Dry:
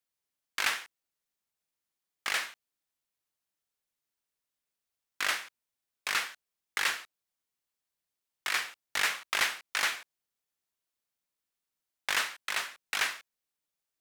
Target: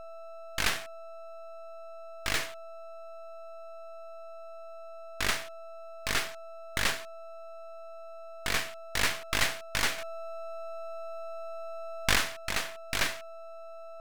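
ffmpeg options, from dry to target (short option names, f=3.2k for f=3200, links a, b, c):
-filter_complex "[0:a]aeval=exprs='val(0)+0.00794*sin(2*PI*660*n/s)':c=same,asettb=1/sr,asplit=3[a][b][c];[a]atrim=end=9.984[d];[b]atrim=start=9.98:end=12.16,asetpts=PTS-STARTPTS,afade=t=in:d=0.004:c=qsin,afade=t=out:st=2.176:d=0.004:c=qsin,acontrast=33[e];[c]atrim=start=12.156[f];[d][e]acrossfade=d=0.004:c1=hsin:c2=qsin[g];[g][f]acrossfade=d=0.004:c1=qsin:c2=hsin,aeval=exprs='max(val(0),0)':c=same,volume=4.5dB"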